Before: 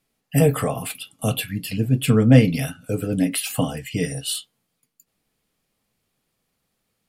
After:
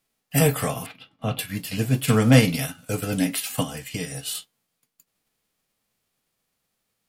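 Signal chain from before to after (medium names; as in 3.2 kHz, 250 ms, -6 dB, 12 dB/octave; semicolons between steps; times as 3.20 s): formants flattened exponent 0.6; 0.86–1.39 s: distance through air 320 m; 3.62–4.35 s: compression 4:1, threshold -24 dBFS, peak gain reduction 6 dB; trim -2.5 dB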